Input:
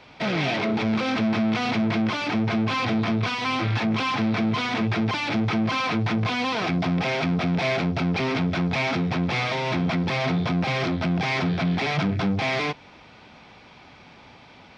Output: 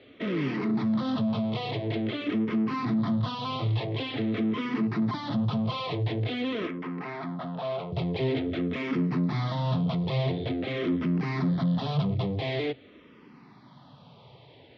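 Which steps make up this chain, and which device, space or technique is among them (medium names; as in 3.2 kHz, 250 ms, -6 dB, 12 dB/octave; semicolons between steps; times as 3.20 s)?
6.67–7.92 s: three-band isolator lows -15 dB, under 400 Hz, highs -16 dB, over 3 kHz; barber-pole phaser into a guitar amplifier (barber-pole phaser -0.47 Hz; saturation -21.5 dBFS, distortion -18 dB; cabinet simulation 100–4000 Hz, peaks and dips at 130 Hz +9 dB, 270 Hz +4 dB, 420 Hz +4 dB, 800 Hz -7 dB, 1.5 kHz -10 dB, 2.4 kHz -10 dB)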